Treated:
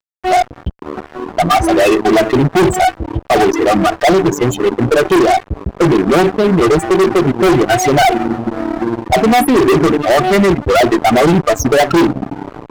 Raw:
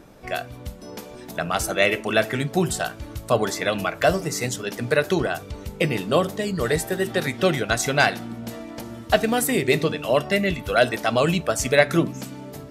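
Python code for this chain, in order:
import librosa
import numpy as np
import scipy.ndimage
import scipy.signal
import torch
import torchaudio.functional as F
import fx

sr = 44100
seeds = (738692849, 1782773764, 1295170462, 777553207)

y = fx.small_body(x, sr, hz=(350.0, 740.0, 1200.0, 3100.0), ring_ms=40, db=12)
y = fx.spec_topn(y, sr, count=8)
y = fx.fuzz(y, sr, gain_db=25.0, gate_db=-34.0)
y = y * librosa.db_to_amplitude(6.0)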